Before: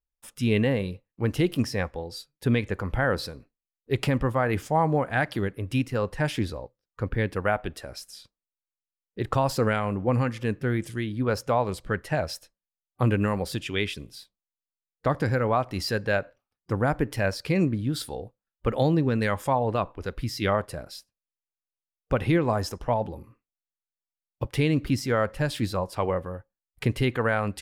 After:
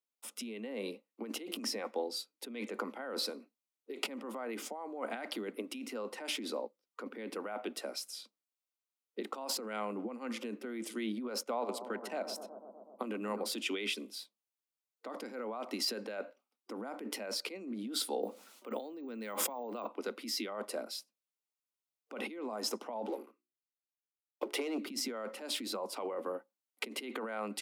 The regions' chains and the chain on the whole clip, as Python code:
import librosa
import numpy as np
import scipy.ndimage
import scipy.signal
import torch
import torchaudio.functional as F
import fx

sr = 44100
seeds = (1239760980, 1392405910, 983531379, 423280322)

y = fx.chain(x, sr, fx.level_steps(step_db=14),
    fx.echo_bbd(ms=123, stages=1024, feedback_pct=76, wet_db=-14.5), at=(11.43, 13.46))
y = fx.chain(y, sr, fx.resample_bad(factor=2, down='none', up='hold'),
    fx.env_flatten(amount_pct=50), at=(18.23, 19.87))
y = fx.chain(y, sr, fx.hum_notches(base_hz=60, count=7),
    fx.leveller(passes=2),
    fx.ladder_highpass(hz=280.0, resonance_pct=30), at=(23.05, 24.78))
y = fx.over_compress(y, sr, threshold_db=-31.0, ratio=-1.0)
y = scipy.signal.sosfilt(scipy.signal.butter(16, 210.0, 'highpass', fs=sr, output='sos'), y)
y = fx.notch(y, sr, hz=1700.0, q=5.3)
y = y * 10.0 ** (-5.5 / 20.0)